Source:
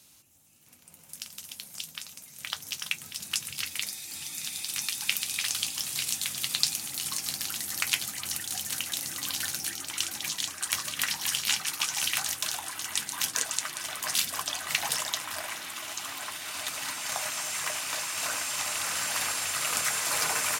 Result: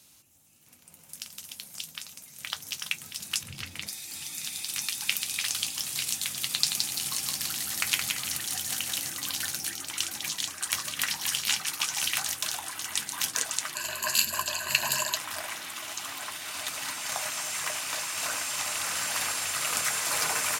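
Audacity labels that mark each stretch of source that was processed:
3.430000	3.880000	tilt -3 dB/oct
6.500000	9.100000	feedback echo 0.17 s, feedback 38%, level -4.5 dB
13.750000	15.160000	ripple EQ crests per octave 1.4, crest to trough 14 dB

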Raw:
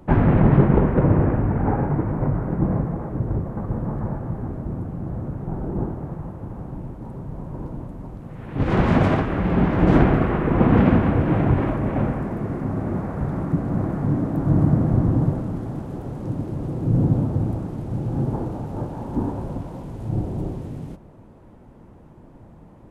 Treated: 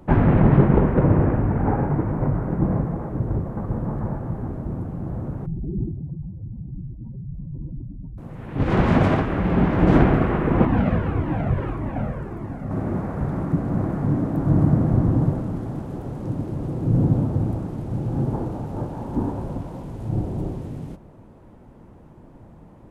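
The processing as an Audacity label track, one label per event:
5.460000	8.180000	spectral contrast raised exponent 2.8
10.650000	12.710000	cascading flanger falling 1.7 Hz

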